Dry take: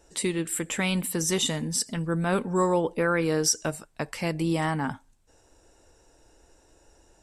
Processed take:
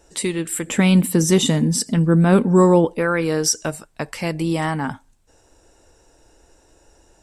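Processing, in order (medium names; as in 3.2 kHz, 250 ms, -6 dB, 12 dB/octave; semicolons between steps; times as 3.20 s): 0.67–2.85 s: peaking EQ 210 Hz +9.5 dB 2.4 oct; trim +4.5 dB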